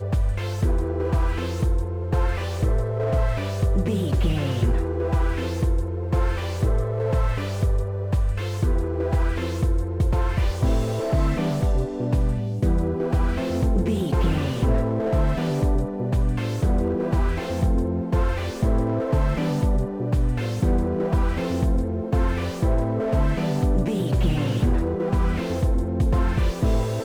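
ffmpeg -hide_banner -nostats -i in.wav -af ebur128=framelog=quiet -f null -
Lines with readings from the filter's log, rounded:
Integrated loudness:
  I:         -24.0 LUFS
  Threshold: -34.0 LUFS
Loudness range:
  LRA:         1.4 LU
  Threshold: -43.9 LUFS
  LRA low:   -24.7 LUFS
  LRA high:  -23.3 LUFS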